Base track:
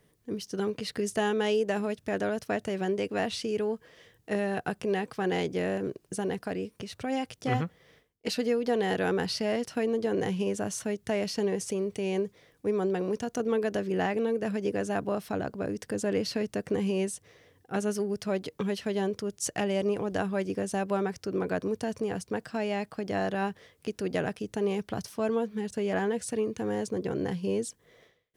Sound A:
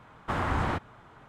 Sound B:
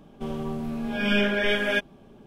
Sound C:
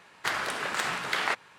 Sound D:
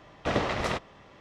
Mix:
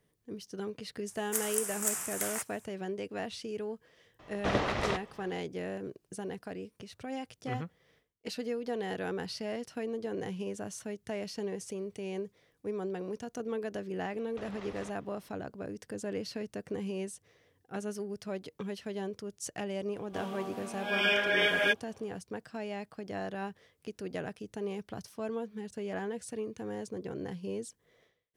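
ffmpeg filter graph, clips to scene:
ffmpeg -i bed.wav -i cue0.wav -i cue1.wav -i cue2.wav -i cue3.wav -filter_complex "[4:a]asplit=2[link_01][link_02];[0:a]volume=-8dB[link_03];[3:a]aexciter=amount=13.4:drive=9.2:freq=6400[link_04];[link_02]acompressor=threshold=-31dB:ratio=6:attack=3.2:release=140:knee=1:detection=peak[link_05];[2:a]highpass=540[link_06];[link_04]atrim=end=1.58,asetpts=PTS-STARTPTS,volume=-15dB,afade=type=in:duration=0.004:curve=hsin,afade=type=out:start_time=1.576:duration=0.004:curve=hsin,adelay=1080[link_07];[link_01]atrim=end=1.2,asetpts=PTS-STARTPTS,volume=-2.5dB,afade=type=in:duration=0.004:curve=hsin,afade=type=out:start_time=1.196:duration=0.004:curve=hsin,adelay=4190[link_08];[link_05]atrim=end=1.2,asetpts=PTS-STARTPTS,volume=-12dB,afade=type=in:duration=0.004:curve=hsin,afade=type=out:start_time=1.196:duration=0.004:curve=hsin,adelay=622692S[link_09];[link_06]atrim=end=2.26,asetpts=PTS-STARTPTS,volume=-1.5dB,afade=type=in:duration=0.004:curve=hsin,afade=type=out:start_time=2.256:duration=0.004:curve=hsin,adelay=19930[link_10];[link_03][link_07][link_08][link_09][link_10]amix=inputs=5:normalize=0" out.wav

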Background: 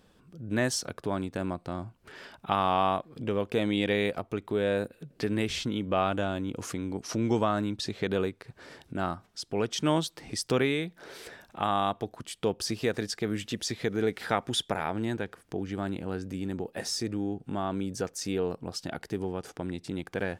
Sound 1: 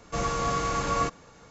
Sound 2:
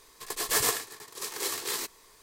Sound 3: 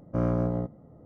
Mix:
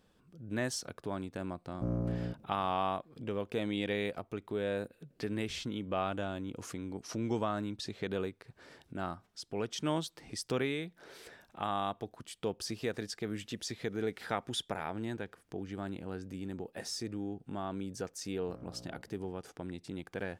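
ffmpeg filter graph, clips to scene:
ffmpeg -i bed.wav -i cue0.wav -i cue1.wav -i cue2.wav -filter_complex "[3:a]asplit=2[link_01][link_02];[0:a]volume=-7dB[link_03];[link_01]equalizer=frequency=2100:width=0.34:gain=-12[link_04];[link_02]acompressor=threshold=-37dB:ratio=6:attack=3.2:release=140:knee=1:detection=peak[link_05];[link_04]atrim=end=1.05,asetpts=PTS-STARTPTS,volume=-6dB,afade=type=in:duration=0.004:curve=hsin,afade=type=out:start_time=1.046:duration=0.004:curve=hsin,adelay=1670[link_06];[link_05]atrim=end=1.05,asetpts=PTS-STARTPTS,volume=-12dB,afade=type=in:duration=0.004:curve=hsin,afade=type=out:start_time=1.046:duration=0.004:curve=hsin,adelay=18350[link_07];[link_03][link_06][link_07]amix=inputs=3:normalize=0" out.wav

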